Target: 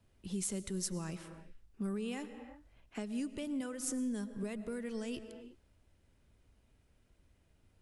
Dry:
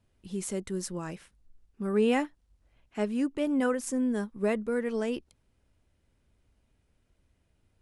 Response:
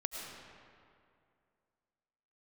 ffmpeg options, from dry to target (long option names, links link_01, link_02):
-filter_complex "[0:a]alimiter=limit=-23dB:level=0:latency=1:release=186,asplit=2[link_01][link_02];[1:a]atrim=start_sample=2205,afade=type=out:start_time=0.42:duration=0.01,atrim=end_sample=18963[link_03];[link_02][link_03]afir=irnorm=-1:irlink=0,volume=-9.5dB[link_04];[link_01][link_04]amix=inputs=2:normalize=0,acrossover=split=180|3000[link_05][link_06][link_07];[link_06]acompressor=threshold=-42dB:ratio=4[link_08];[link_05][link_08][link_07]amix=inputs=3:normalize=0,volume=-1dB"